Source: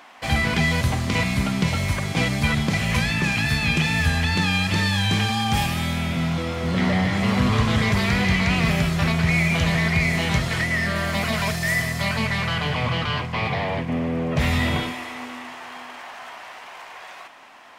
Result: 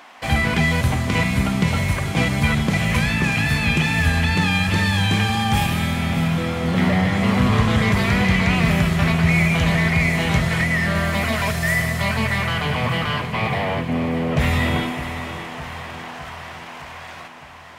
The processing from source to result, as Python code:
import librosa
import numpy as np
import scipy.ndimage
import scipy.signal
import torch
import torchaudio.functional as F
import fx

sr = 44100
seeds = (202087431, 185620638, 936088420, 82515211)

p1 = fx.dynamic_eq(x, sr, hz=4900.0, q=1.2, threshold_db=-44.0, ratio=4.0, max_db=-5)
p2 = p1 + fx.echo_feedback(p1, sr, ms=610, feedback_pct=59, wet_db=-12, dry=0)
y = p2 * 10.0 ** (2.5 / 20.0)